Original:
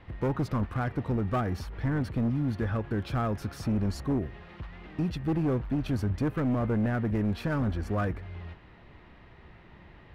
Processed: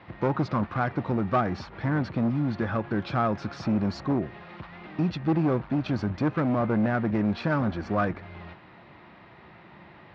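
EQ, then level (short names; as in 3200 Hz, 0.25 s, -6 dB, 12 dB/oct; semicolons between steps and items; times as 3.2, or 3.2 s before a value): air absorption 66 m; speaker cabinet 180–5400 Hz, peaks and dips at 260 Hz -5 dB, 440 Hz -7 dB, 1800 Hz -3 dB, 3000 Hz -4 dB; +7.5 dB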